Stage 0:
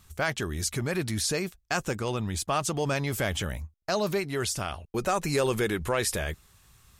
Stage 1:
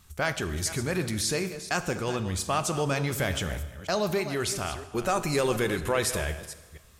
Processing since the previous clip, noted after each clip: reverse delay 0.242 s, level -12.5 dB; plate-style reverb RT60 1.3 s, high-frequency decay 0.85×, DRR 10.5 dB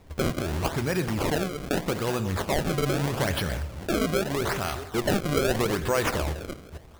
in parallel at 0 dB: compressor, threshold -37 dBFS, peak gain reduction 15 dB; on the sum: decimation with a swept rate 28×, swing 160% 0.8 Hz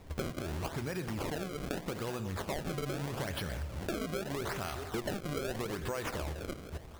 compressor 6:1, threshold -34 dBFS, peak gain reduction 14 dB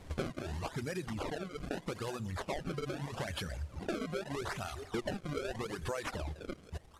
CVSD 64 kbps; reverb removal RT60 2 s; gain +1 dB

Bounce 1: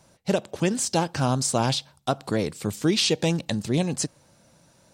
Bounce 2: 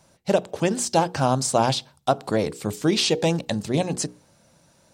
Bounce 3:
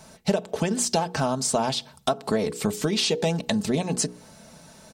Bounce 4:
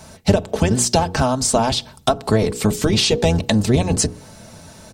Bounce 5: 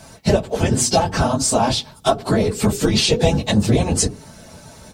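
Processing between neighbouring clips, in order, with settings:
notches 60/120/180/240/300/360/420/480 Hz; dynamic EQ 700 Hz, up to +6 dB, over -38 dBFS, Q 0.88
compressor 5:1, threshold -32 dBFS, peak gain reduction 16 dB; comb 4.6 ms, depth 51%; gain +9 dB
octaver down 1 oct, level -1 dB; gain +6.5 dB
phase scrambler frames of 50 ms

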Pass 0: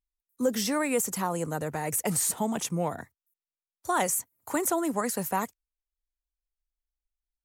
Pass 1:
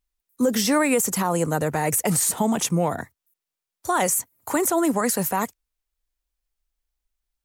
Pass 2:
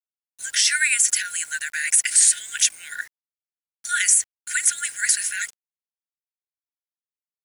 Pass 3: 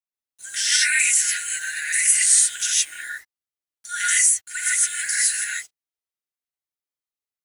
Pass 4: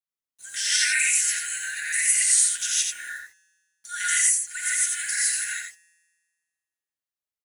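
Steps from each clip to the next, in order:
limiter -20.5 dBFS, peak gain reduction 5.5 dB; gain +8.5 dB
FFT band-pass 1400–11000 Hz; bit-crush 9-bit; gain +7.5 dB
non-linear reverb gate 0.18 s rising, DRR -7.5 dB; gain -7.5 dB
resonator 170 Hz, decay 1.6 s, mix 40%; echo 87 ms -5 dB

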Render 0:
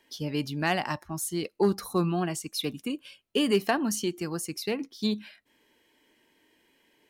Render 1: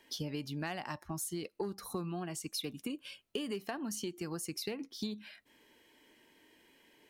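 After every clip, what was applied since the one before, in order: compressor 10:1, threshold -37 dBFS, peak gain reduction 18 dB; gain +1.5 dB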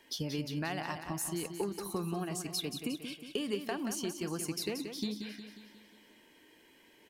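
feedback echo 0.18 s, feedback 53%, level -8 dB; gain +2 dB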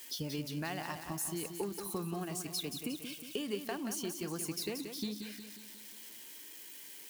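switching spikes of -39 dBFS; gain -2.5 dB

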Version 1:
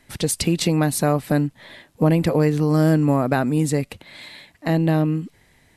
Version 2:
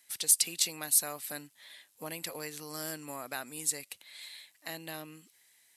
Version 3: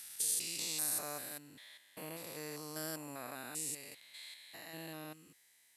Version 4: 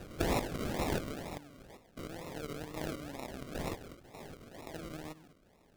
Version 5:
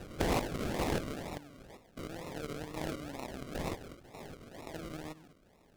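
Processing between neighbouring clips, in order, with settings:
differentiator
stepped spectrum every 0.2 s; gain -1.5 dB
decimation with a swept rate 40×, swing 60% 2.1 Hz; gain +3 dB
Doppler distortion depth 0.56 ms; gain +1 dB

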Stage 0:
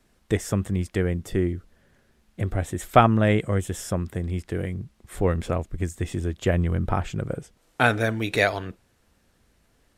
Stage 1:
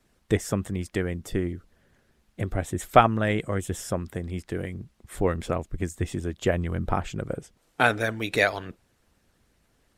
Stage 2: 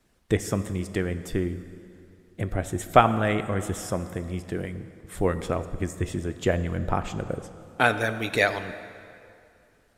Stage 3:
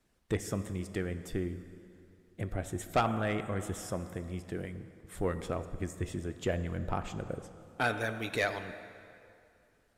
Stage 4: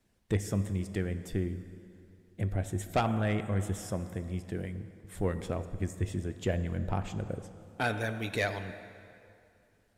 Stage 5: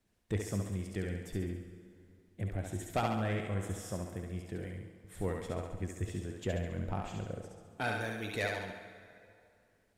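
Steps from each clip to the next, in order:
harmonic-percussive split percussive +7 dB; gain -6.5 dB
plate-style reverb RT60 2.6 s, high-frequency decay 0.75×, DRR 11 dB
soft clip -12.5 dBFS, distortion -13 dB; gain -7 dB
thirty-one-band EQ 100 Hz +8 dB, 200 Hz +5 dB, 1250 Hz -5 dB
thinning echo 69 ms, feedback 55%, high-pass 300 Hz, level -3 dB; gain -5 dB

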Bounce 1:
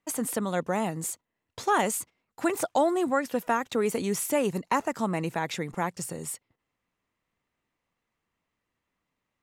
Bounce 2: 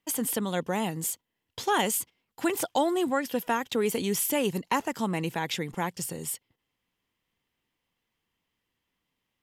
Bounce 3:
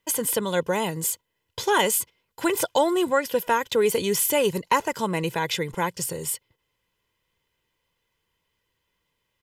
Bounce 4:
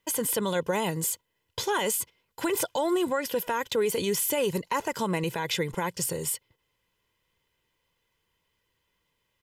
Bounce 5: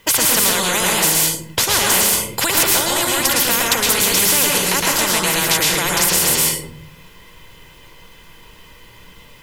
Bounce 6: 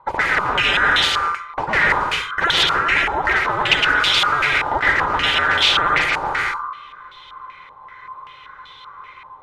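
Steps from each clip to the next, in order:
thirty-one-band EQ 630 Hz -5 dB, 1250 Hz -5 dB, 3150 Hz +9 dB, 5000 Hz +4 dB, 12500 Hz +8 dB
comb 2 ms, depth 56%; gain +4 dB
limiter -18.5 dBFS, peak gain reduction 10.5 dB
reverb RT60 0.45 s, pre-delay 0.11 s, DRR -4 dB; spectral compressor 4:1; gain +7.5 dB
band-swap scrambler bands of 1000 Hz; stepped low-pass 5.2 Hz 880–3400 Hz; gain -2.5 dB

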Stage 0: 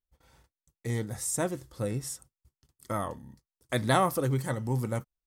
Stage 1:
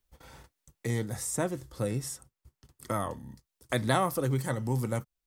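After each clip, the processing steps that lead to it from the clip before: three-band squash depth 40%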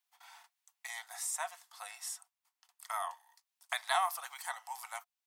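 rippled Chebyshev high-pass 690 Hz, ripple 3 dB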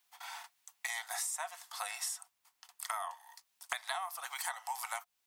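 compressor 16:1, threshold -45 dBFS, peak gain reduction 20 dB; gain +10.5 dB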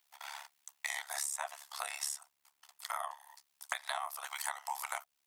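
AM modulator 71 Hz, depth 90%; gain +4 dB

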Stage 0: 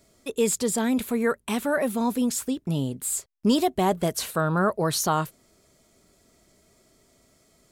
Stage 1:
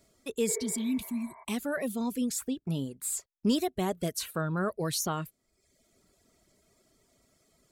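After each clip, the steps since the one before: reverb removal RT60 0.78 s; spectral repair 0.52–1.41, 380–2300 Hz both; dynamic EQ 900 Hz, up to -7 dB, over -40 dBFS, Q 1.2; gain -4.5 dB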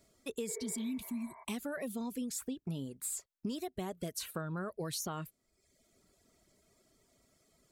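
compressor 12:1, threshold -32 dBFS, peak gain reduction 11.5 dB; gain -2.5 dB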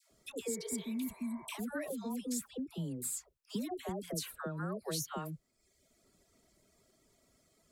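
dispersion lows, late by 0.113 s, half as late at 780 Hz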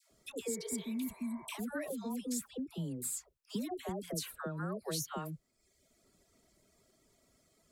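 nothing audible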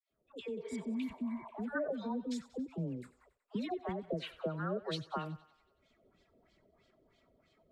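opening faded in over 0.79 s; LFO low-pass sine 3.1 Hz 510–3600 Hz; thinning echo 93 ms, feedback 62%, high-pass 530 Hz, level -17 dB

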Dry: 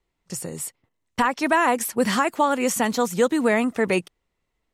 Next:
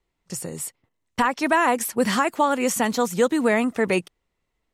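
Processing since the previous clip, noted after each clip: nothing audible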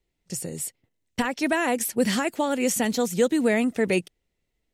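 bell 1100 Hz -12 dB 0.9 oct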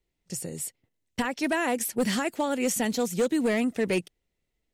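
hard clip -16.5 dBFS, distortion -18 dB; gain -2.5 dB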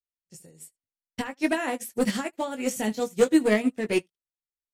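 early reflections 19 ms -5.5 dB, 77 ms -15.5 dB; upward expander 2.5:1, over -44 dBFS; gain +5.5 dB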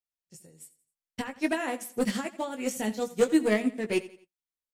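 feedback echo 86 ms, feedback 38%, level -17.5 dB; gain -3 dB

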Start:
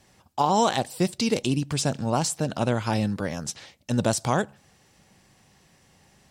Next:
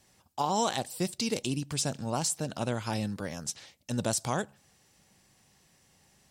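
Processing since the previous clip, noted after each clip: high shelf 4700 Hz +8 dB; gain -7.5 dB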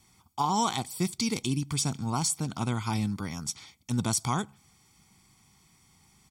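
comb 0.9 ms, depth 79%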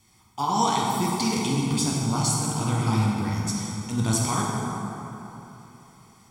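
plate-style reverb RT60 3.4 s, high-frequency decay 0.5×, DRR -4 dB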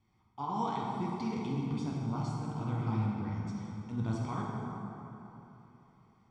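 tape spacing loss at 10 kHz 32 dB; gain -8.5 dB

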